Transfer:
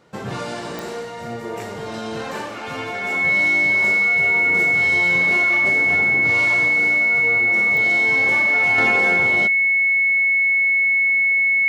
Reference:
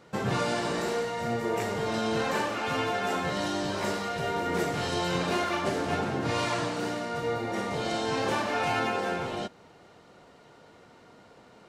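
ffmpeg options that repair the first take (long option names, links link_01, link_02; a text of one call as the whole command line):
ffmpeg -i in.wav -af "adeclick=threshold=4,bandreject=frequency=2200:width=30,asetnsamples=nb_out_samples=441:pad=0,asendcmd='8.78 volume volume -6dB',volume=0dB" out.wav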